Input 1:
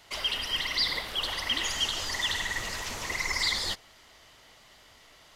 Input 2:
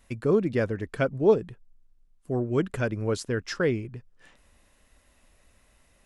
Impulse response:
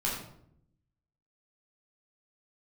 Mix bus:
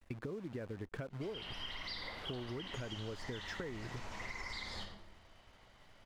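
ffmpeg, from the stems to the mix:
-filter_complex "[0:a]adelay=1100,volume=-11.5dB,asplit=2[link_01][link_02];[link_02]volume=-5dB[link_03];[1:a]acompressor=threshold=-30dB:ratio=5,acrusher=bits=8:dc=4:mix=0:aa=0.000001,volume=-1dB[link_04];[2:a]atrim=start_sample=2205[link_05];[link_03][link_05]afir=irnorm=-1:irlink=0[link_06];[link_01][link_04][link_06]amix=inputs=3:normalize=0,aemphasis=mode=reproduction:type=75kf,acompressor=threshold=-40dB:ratio=6"

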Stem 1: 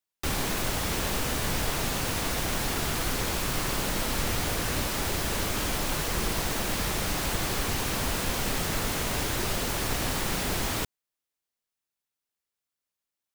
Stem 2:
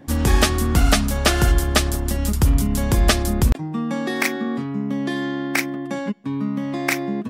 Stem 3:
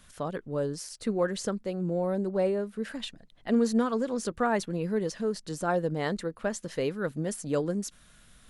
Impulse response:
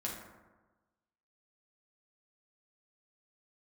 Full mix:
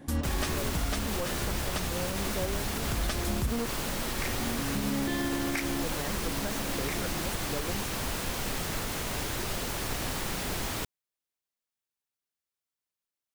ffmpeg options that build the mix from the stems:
-filter_complex "[0:a]volume=-4dB[link_01];[1:a]volume=-4dB[link_02];[2:a]aeval=exprs='0.211*(cos(1*acos(clip(val(0)/0.211,-1,1)))-cos(1*PI/2))+0.0422*(cos(3*acos(clip(val(0)/0.211,-1,1)))-cos(3*PI/2))':channel_layout=same,volume=-2dB,asplit=3[link_03][link_04][link_05];[link_03]atrim=end=3.66,asetpts=PTS-STARTPTS,afade=type=out:start_time=3.656:duration=0.004:curve=hsin[link_06];[link_04]atrim=start=3.66:end=5.82,asetpts=PTS-STARTPTS,volume=0[link_07];[link_05]atrim=start=5.82,asetpts=PTS-STARTPTS,afade=type=in:duration=0.004:curve=hsin[link_08];[link_06][link_07][link_08]concat=n=3:v=0:a=1,asplit=2[link_09][link_10];[link_10]apad=whole_len=321813[link_11];[link_02][link_11]sidechaincompress=threshold=-45dB:ratio=8:attack=16:release=893[link_12];[link_01][link_12][link_09]amix=inputs=3:normalize=0,alimiter=limit=-20.5dB:level=0:latency=1:release=74"

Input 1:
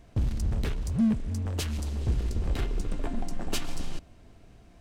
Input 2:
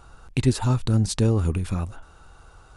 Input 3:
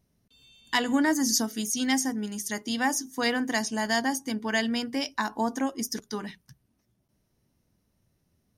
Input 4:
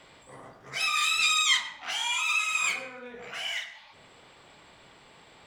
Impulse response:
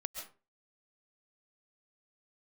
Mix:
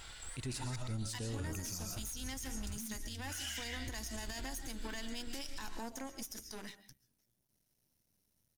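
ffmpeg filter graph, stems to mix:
-filter_complex "[0:a]aecho=1:1:3:0.65,adelay=1800,volume=-11dB[link_01];[1:a]volume=-8dB,asplit=2[link_02][link_03];[link_03]volume=-4dB[link_04];[2:a]highshelf=frequency=7400:gain=6.5,adelay=400,volume=-9dB,asplit=2[link_05][link_06];[link_06]volume=-13dB[link_07];[3:a]highpass=970,asplit=2[link_08][link_09];[link_09]adelay=3.9,afreqshift=-2.8[link_10];[link_08][link_10]amix=inputs=2:normalize=1,volume=2.5dB,asplit=3[link_11][link_12][link_13];[link_11]atrim=end=0.76,asetpts=PTS-STARTPTS,afade=type=out:start_time=0.756:duration=0.004:curve=hsin[link_14];[link_12]atrim=start=0.76:end=3.28,asetpts=PTS-STARTPTS,volume=0[link_15];[link_13]atrim=start=3.28,asetpts=PTS-STARTPTS,afade=type=in:duration=0.004:curve=hsin[link_16];[link_14][link_15][link_16]concat=n=3:v=0:a=1,asplit=2[link_17][link_18];[link_18]volume=-6dB[link_19];[link_02][link_05]amix=inputs=2:normalize=0,aeval=exprs='max(val(0),0)':channel_layout=same,acompressor=threshold=-40dB:ratio=6,volume=0dB[link_20];[link_01][link_17]amix=inputs=2:normalize=0,asuperstop=centerf=710:order=20:qfactor=0.73,acompressor=threshold=-39dB:ratio=6,volume=0dB[link_21];[4:a]atrim=start_sample=2205[link_22];[link_04][link_07][link_19]amix=inputs=3:normalize=0[link_23];[link_23][link_22]afir=irnorm=-1:irlink=0[link_24];[link_20][link_21][link_24]amix=inputs=3:normalize=0,highshelf=frequency=2500:gain=9,bandreject=frequency=1200:width=13,alimiter=level_in=7.5dB:limit=-24dB:level=0:latency=1:release=71,volume=-7.5dB"

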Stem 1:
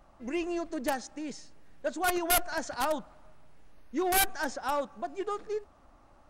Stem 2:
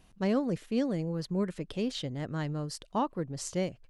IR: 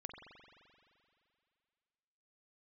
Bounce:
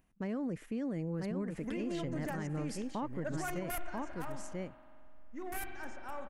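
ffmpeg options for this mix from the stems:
-filter_complex "[0:a]asubboost=boost=3:cutoff=160,adelay=1400,volume=-6dB,asplit=2[link_01][link_02];[link_02]volume=-6dB[link_03];[1:a]agate=range=-41dB:threshold=-49dB:ratio=16:detection=peak,volume=-2dB,asplit=3[link_04][link_05][link_06];[link_05]volume=-8dB[link_07];[link_06]apad=whole_len=339194[link_08];[link_01][link_08]sidechaingate=range=-20dB:threshold=-56dB:ratio=16:detection=peak[link_09];[2:a]atrim=start_sample=2205[link_10];[link_03][link_10]afir=irnorm=-1:irlink=0[link_11];[link_07]aecho=0:1:989:1[link_12];[link_09][link_04][link_11][link_12]amix=inputs=4:normalize=0,equalizer=frequency=250:width_type=o:width=1:gain=4,equalizer=frequency=2000:width_type=o:width=1:gain=6,equalizer=frequency=4000:width_type=o:width=1:gain=-10,acompressor=mode=upward:threshold=-50dB:ratio=2.5,alimiter=level_in=5.5dB:limit=-24dB:level=0:latency=1:release=87,volume=-5.5dB"

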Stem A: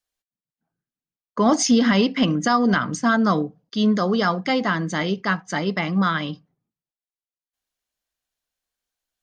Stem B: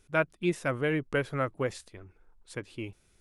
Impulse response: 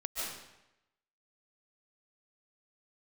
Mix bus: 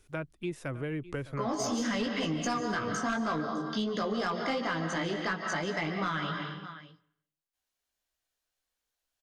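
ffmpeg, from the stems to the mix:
-filter_complex "[0:a]flanger=delay=16.5:depth=2.7:speed=2.8,volume=-0.5dB,asplit=3[link_01][link_02][link_03];[link_02]volume=-7dB[link_04];[link_03]volume=-20dB[link_05];[1:a]acrossover=split=290[link_06][link_07];[link_07]acompressor=threshold=-39dB:ratio=3[link_08];[link_06][link_08]amix=inputs=2:normalize=0,volume=0.5dB,asplit=3[link_09][link_10][link_11];[link_10]volume=-18dB[link_12];[link_11]apad=whole_len=406767[link_13];[link_01][link_13]sidechaincompress=threshold=-38dB:ratio=8:attack=16:release=360[link_14];[2:a]atrim=start_sample=2205[link_15];[link_04][link_15]afir=irnorm=-1:irlink=0[link_16];[link_05][link_12]amix=inputs=2:normalize=0,aecho=0:1:607:1[link_17];[link_14][link_09][link_16][link_17]amix=inputs=4:normalize=0,equalizer=frequency=190:width_type=o:width=0.42:gain=-6.5,asoftclip=type=tanh:threshold=-15dB,acompressor=threshold=-30dB:ratio=4"

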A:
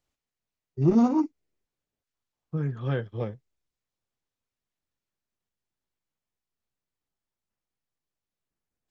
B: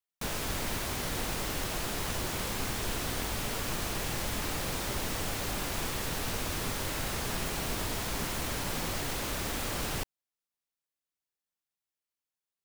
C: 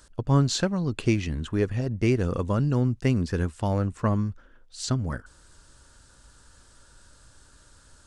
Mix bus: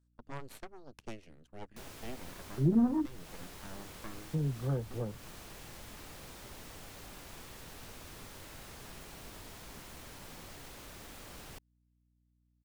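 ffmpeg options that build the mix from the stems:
ffmpeg -i stem1.wav -i stem2.wav -i stem3.wav -filter_complex "[0:a]highpass=130,afwtdn=0.0178,adelay=1800,volume=-1dB[link_01];[1:a]adelay=1550,volume=-15.5dB[link_02];[2:a]aeval=exprs='0.398*(cos(1*acos(clip(val(0)/0.398,-1,1)))-cos(1*PI/2))+0.112*(cos(3*acos(clip(val(0)/0.398,-1,1)))-cos(3*PI/2))+0.126*(cos(6*acos(clip(val(0)/0.398,-1,1)))-cos(6*PI/2))+0.02*(cos(8*acos(clip(val(0)/0.398,-1,1)))-cos(8*PI/2))':channel_layout=same,volume=-20dB[link_03];[link_01][link_02][link_03]amix=inputs=3:normalize=0,acrossover=split=220[link_04][link_05];[link_05]acompressor=threshold=-42dB:ratio=2[link_06];[link_04][link_06]amix=inputs=2:normalize=0,aeval=exprs='val(0)+0.000251*(sin(2*PI*60*n/s)+sin(2*PI*2*60*n/s)/2+sin(2*PI*3*60*n/s)/3+sin(2*PI*4*60*n/s)/4+sin(2*PI*5*60*n/s)/5)':channel_layout=same" out.wav

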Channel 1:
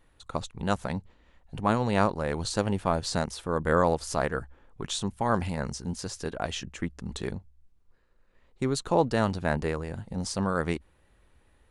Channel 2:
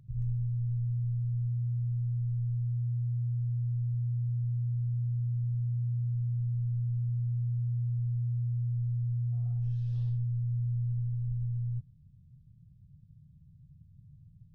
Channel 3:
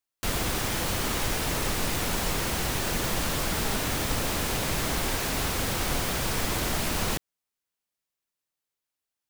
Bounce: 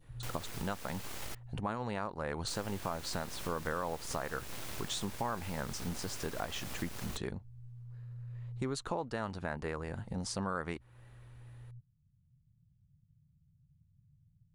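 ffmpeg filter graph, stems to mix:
ffmpeg -i stem1.wav -i stem2.wav -i stem3.wav -filter_complex "[0:a]adynamicequalizer=threshold=0.0126:dfrequency=1300:dqfactor=0.71:tfrequency=1300:tqfactor=0.71:attack=5:release=100:ratio=0.375:range=3:mode=boostabove:tftype=bell,alimiter=limit=-14.5dB:level=0:latency=1:release=393,volume=1.5dB,asplit=2[link_01][link_02];[1:a]volume=-11.5dB[link_03];[2:a]aeval=exprs='abs(val(0))':channel_layout=same,volume=-9dB,asplit=3[link_04][link_05][link_06];[link_04]atrim=end=1.35,asetpts=PTS-STARTPTS,afade=type=out:start_time=1.346:duration=0.004:curve=hsin[link_07];[link_05]atrim=start=1.35:end=2.47,asetpts=PTS-STARTPTS,volume=0[link_08];[link_06]atrim=start=2.47,asetpts=PTS-STARTPTS,afade=type=in:duration=0.004:curve=hsin[link_09];[link_07][link_08][link_09]concat=n=3:v=0:a=1[link_10];[link_02]apad=whole_len=641219[link_11];[link_03][link_11]sidechaincompress=threshold=-37dB:ratio=8:attack=47:release=1380[link_12];[link_01][link_12][link_10]amix=inputs=3:normalize=0,acompressor=threshold=-38dB:ratio=2.5" out.wav

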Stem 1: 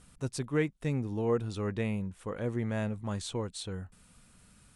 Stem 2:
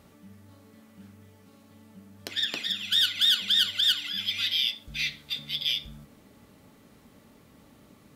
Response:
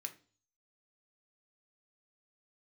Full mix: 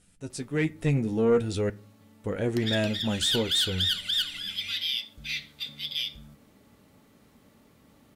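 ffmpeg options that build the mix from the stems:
-filter_complex "[0:a]equalizer=frequency=1100:width_type=o:width=0.37:gain=-14,dynaudnorm=framelen=220:gausssize=5:maxgain=12dB,flanger=delay=9.8:depth=4:regen=39:speed=0.47:shape=triangular,volume=-1dB,asplit=3[link_01][link_02][link_03];[link_01]atrim=end=1.7,asetpts=PTS-STARTPTS,afade=type=out:start_time=1.696:duration=0.004:curve=hsin[link_04];[link_02]atrim=start=1.7:end=2.24,asetpts=PTS-STARTPTS,volume=0[link_05];[link_03]atrim=start=2.24,asetpts=PTS-STARTPTS,afade=type=in:duration=0.004:curve=hsin[link_06];[link_04][link_05][link_06]concat=n=3:v=0:a=1,asplit=2[link_07][link_08];[link_08]volume=-5.5dB[link_09];[1:a]adelay=300,volume=-3dB[link_10];[2:a]atrim=start_sample=2205[link_11];[link_09][link_11]afir=irnorm=-1:irlink=0[link_12];[link_07][link_10][link_12]amix=inputs=3:normalize=0,asoftclip=type=tanh:threshold=-15.5dB"

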